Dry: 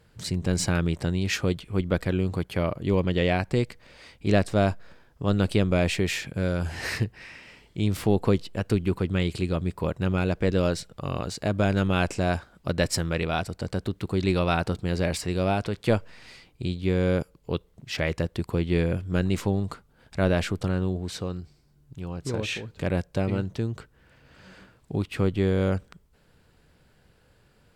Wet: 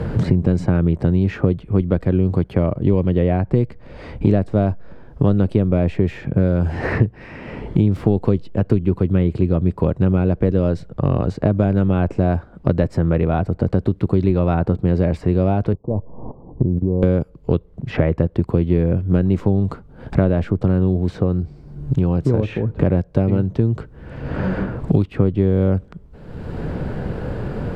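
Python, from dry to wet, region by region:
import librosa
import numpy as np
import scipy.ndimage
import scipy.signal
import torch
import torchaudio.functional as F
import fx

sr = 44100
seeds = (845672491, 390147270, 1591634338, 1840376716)

y = fx.chain(x, sr, fx.steep_lowpass(hz=1100.0, slope=96),
    fx.level_steps(step_db=18), at=(15.73, 17.03))
y = fx.lowpass(y, sr, hz=2000.0, slope=6)
y = fx.tilt_shelf(y, sr, db=7.5, hz=1100.0)
y = fx.band_squash(y, sr, depth_pct=100)
y = y * librosa.db_to_amplitude(1.5)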